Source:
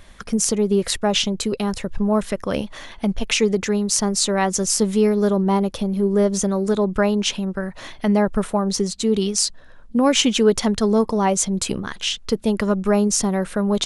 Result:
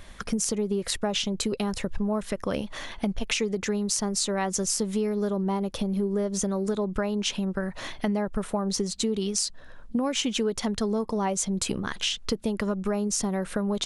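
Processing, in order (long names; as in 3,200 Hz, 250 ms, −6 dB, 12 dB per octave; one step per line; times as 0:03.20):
downward compressor, threshold −24 dBFS, peak gain reduction 13 dB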